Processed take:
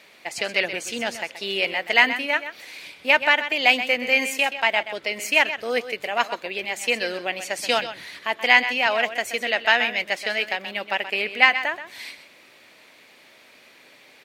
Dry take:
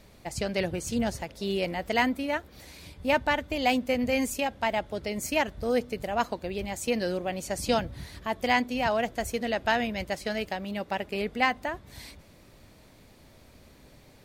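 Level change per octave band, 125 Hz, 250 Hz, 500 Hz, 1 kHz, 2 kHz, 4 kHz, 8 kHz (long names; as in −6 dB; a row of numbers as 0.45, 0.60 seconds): below −10 dB, −5.5 dB, +2.0 dB, +4.0 dB, +12.0 dB, +11.0 dB, +3.5 dB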